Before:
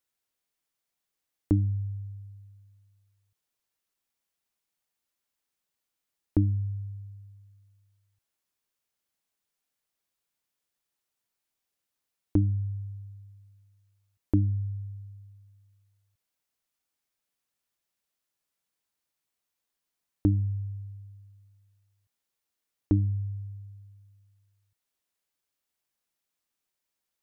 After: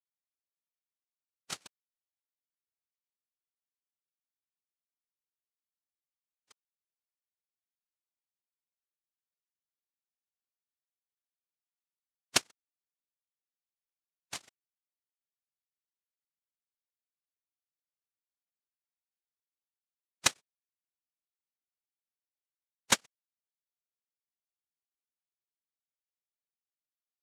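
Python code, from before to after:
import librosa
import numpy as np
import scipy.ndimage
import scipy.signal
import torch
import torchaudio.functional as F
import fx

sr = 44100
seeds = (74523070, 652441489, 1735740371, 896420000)

y = fx.sine_speech(x, sr)
y = fx.spec_gate(y, sr, threshold_db=-10, keep='weak')
y = fx.noise_vocoder(y, sr, seeds[0], bands=1)
y = fx.spec_freeze(y, sr, seeds[1], at_s=4.3, hold_s=2.18)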